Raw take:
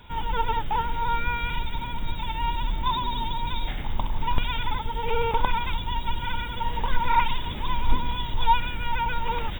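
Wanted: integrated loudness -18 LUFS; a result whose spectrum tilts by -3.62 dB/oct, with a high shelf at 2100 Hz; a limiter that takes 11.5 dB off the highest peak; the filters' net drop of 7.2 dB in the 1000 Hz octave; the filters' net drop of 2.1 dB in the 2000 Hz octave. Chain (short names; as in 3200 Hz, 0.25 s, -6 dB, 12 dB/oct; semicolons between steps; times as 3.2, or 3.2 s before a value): bell 1000 Hz -8 dB; bell 2000 Hz -4 dB; high shelf 2100 Hz +5.5 dB; gain +14 dB; limiter -5 dBFS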